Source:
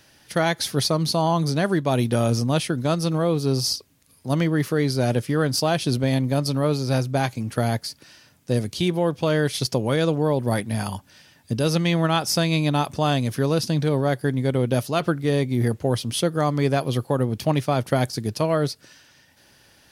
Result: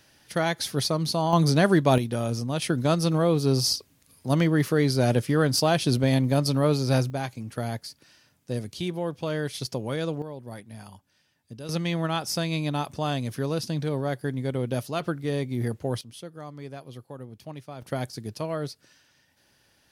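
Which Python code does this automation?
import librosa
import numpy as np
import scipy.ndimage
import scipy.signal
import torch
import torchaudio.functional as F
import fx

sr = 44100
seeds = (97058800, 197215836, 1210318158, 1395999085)

y = fx.gain(x, sr, db=fx.steps((0.0, -4.0), (1.33, 2.0), (1.98, -7.0), (2.62, -0.5), (7.1, -8.0), (10.22, -17.0), (11.69, -6.5), (16.01, -18.5), (17.82, -9.0)))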